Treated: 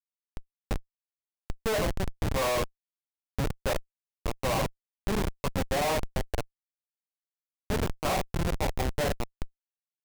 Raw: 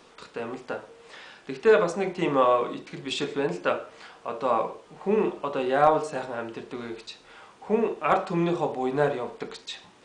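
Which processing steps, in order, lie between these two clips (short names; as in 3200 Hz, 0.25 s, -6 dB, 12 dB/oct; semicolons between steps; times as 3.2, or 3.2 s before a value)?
band shelf 770 Hz +10 dB 1.3 oct; Schmitt trigger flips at -17.5 dBFS; gain -6 dB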